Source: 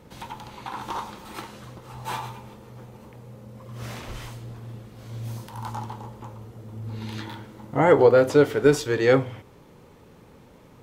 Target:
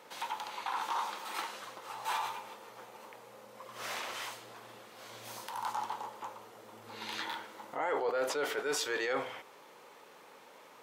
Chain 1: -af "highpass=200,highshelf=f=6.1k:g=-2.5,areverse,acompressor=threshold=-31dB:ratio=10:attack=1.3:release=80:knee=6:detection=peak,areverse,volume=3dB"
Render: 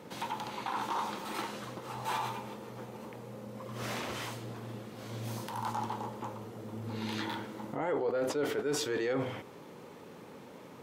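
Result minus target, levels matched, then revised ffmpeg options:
250 Hz band +10.5 dB
-af "highpass=700,highshelf=f=6.1k:g=-2.5,areverse,acompressor=threshold=-31dB:ratio=10:attack=1.3:release=80:knee=6:detection=peak,areverse,volume=3dB"

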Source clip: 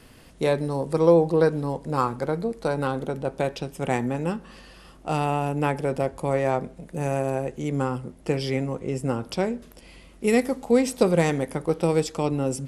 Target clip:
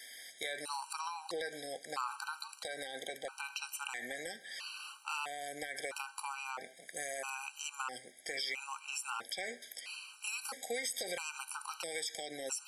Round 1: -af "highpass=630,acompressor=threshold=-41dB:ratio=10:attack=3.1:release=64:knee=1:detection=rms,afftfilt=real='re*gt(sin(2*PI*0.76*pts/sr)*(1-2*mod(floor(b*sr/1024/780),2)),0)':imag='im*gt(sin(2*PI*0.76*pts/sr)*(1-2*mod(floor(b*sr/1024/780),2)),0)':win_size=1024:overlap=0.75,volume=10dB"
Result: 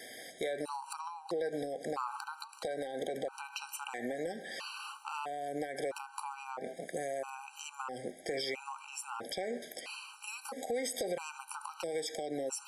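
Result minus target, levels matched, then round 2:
500 Hz band +6.5 dB
-af "highpass=1.8k,acompressor=threshold=-41dB:ratio=10:attack=3.1:release=64:knee=1:detection=rms,afftfilt=real='re*gt(sin(2*PI*0.76*pts/sr)*(1-2*mod(floor(b*sr/1024/780),2)),0)':imag='im*gt(sin(2*PI*0.76*pts/sr)*(1-2*mod(floor(b*sr/1024/780),2)),0)':win_size=1024:overlap=0.75,volume=10dB"

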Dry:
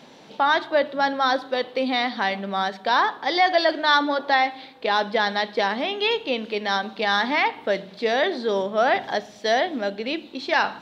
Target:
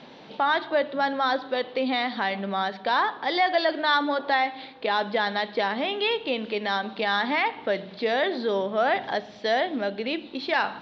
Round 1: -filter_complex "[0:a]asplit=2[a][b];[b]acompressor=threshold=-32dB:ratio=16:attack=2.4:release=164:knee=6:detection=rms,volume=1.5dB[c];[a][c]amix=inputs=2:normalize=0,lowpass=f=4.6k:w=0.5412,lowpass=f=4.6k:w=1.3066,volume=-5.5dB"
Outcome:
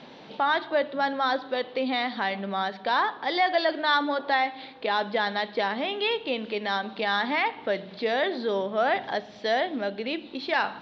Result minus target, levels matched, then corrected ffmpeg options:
compressor: peak gain reduction +6 dB
-filter_complex "[0:a]asplit=2[a][b];[b]acompressor=threshold=-25.5dB:ratio=16:attack=2.4:release=164:knee=6:detection=rms,volume=1.5dB[c];[a][c]amix=inputs=2:normalize=0,lowpass=f=4.6k:w=0.5412,lowpass=f=4.6k:w=1.3066,volume=-5.5dB"

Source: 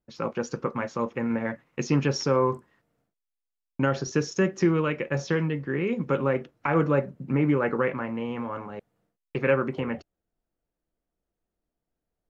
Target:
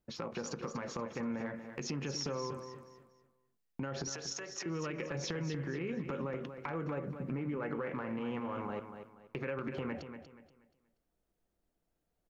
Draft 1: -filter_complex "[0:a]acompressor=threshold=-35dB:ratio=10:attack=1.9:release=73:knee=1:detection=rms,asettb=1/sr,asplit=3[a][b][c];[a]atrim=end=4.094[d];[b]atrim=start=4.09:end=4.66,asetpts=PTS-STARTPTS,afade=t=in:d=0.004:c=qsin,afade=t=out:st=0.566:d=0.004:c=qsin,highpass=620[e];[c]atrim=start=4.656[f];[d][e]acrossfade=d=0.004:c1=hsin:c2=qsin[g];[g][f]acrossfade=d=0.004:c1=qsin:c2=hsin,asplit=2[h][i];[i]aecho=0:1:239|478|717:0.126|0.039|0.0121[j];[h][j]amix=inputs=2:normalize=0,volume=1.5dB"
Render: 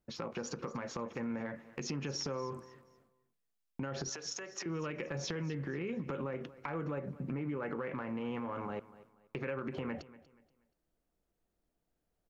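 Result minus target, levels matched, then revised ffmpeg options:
echo-to-direct -9 dB
-filter_complex "[0:a]acompressor=threshold=-35dB:ratio=10:attack=1.9:release=73:knee=1:detection=rms,asettb=1/sr,asplit=3[a][b][c];[a]atrim=end=4.094[d];[b]atrim=start=4.09:end=4.66,asetpts=PTS-STARTPTS,afade=t=in:d=0.004:c=qsin,afade=t=out:st=0.566:d=0.004:c=qsin,highpass=620[e];[c]atrim=start=4.656[f];[d][e]acrossfade=d=0.004:c1=hsin:c2=qsin[g];[g][f]acrossfade=d=0.004:c1=qsin:c2=hsin,asplit=2[h][i];[i]aecho=0:1:239|478|717|956:0.355|0.11|0.0341|0.0106[j];[h][j]amix=inputs=2:normalize=0,volume=1.5dB"

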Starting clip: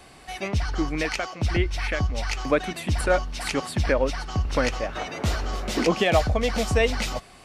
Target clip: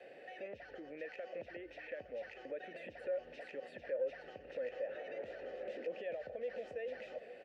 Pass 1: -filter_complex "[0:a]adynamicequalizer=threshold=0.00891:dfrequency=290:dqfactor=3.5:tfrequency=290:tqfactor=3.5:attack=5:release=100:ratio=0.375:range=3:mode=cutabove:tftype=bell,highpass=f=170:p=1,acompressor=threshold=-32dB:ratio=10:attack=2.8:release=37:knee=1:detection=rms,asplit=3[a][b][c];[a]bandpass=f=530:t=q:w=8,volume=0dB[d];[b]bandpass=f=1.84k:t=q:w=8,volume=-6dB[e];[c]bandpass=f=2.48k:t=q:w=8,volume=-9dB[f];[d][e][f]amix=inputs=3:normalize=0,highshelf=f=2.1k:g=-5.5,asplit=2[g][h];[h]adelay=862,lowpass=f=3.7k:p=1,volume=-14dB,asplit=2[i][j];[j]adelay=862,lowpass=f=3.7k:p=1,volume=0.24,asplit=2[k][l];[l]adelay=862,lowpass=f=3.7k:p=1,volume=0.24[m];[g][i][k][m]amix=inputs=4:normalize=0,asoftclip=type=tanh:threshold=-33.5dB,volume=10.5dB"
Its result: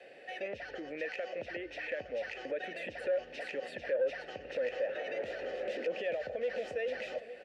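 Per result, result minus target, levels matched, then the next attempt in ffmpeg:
compressor: peak gain reduction -6.5 dB; 4000 Hz band +5.0 dB
-filter_complex "[0:a]adynamicequalizer=threshold=0.00891:dfrequency=290:dqfactor=3.5:tfrequency=290:tqfactor=3.5:attack=5:release=100:ratio=0.375:range=3:mode=cutabove:tftype=bell,highpass=f=170:p=1,acompressor=threshold=-39.5dB:ratio=10:attack=2.8:release=37:knee=1:detection=rms,asplit=3[a][b][c];[a]bandpass=f=530:t=q:w=8,volume=0dB[d];[b]bandpass=f=1.84k:t=q:w=8,volume=-6dB[e];[c]bandpass=f=2.48k:t=q:w=8,volume=-9dB[f];[d][e][f]amix=inputs=3:normalize=0,highshelf=f=2.1k:g=-5.5,asplit=2[g][h];[h]adelay=862,lowpass=f=3.7k:p=1,volume=-14dB,asplit=2[i][j];[j]adelay=862,lowpass=f=3.7k:p=1,volume=0.24,asplit=2[k][l];[l]adelay=862,lowpass=f=3.7k:p=1,volume=0.24[m];[g][i][k][m]amix=inputs=4:normalize=0,asoftclip=type=tanh:threshold=-33.5dB,volume=10.5dB"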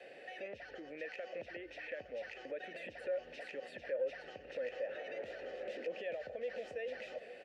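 4000 Hz band +4.5 dB
-filter_complex "[0:a]adynamicequalizer=threshold=0.00891:dfrequency=290:dqfactor=3.5:tfrequency=290:tqfactor=3.5:attack=5:release=100:ratio=0.375:range=3:mode=cutabove:tftype=bell,highpass=f=170:p=1,acompressor=threshold=-39.5dB:ratio=10:attack=2.8:release=37:knee=1:detection=rms,asplit=3[a][b][c];[a]bandpass=f=530:t=q:w=8,volume=0dB[d];[b]bandpass=f=1.84k:t=q:w=8,volume=-6dB[e];[c]bandpass=f=2.48k:t=q:w=8,volume=-9dB[f];[d][e][f]amix=inputs=3:normalize=0,highshelf=f=2.1k:g=-13.5,asplit=2[g][h];[h]adelay=862,lowpass=f=3.7k:p=1,volume=-14dB,asplit=2[i][j];[j]adelay=862,lowpass=f=3.7k:p=1,volume=0.24,asplit=2[k][l];[l]adelay=862,lowpass=f=3.7k:p=1,volume=0.24[m];[g][i][k][m]amix=inputs=4:normalize=0,asoftclip=type=tanh:threshold=-33.5dB,volume=10.5dB"

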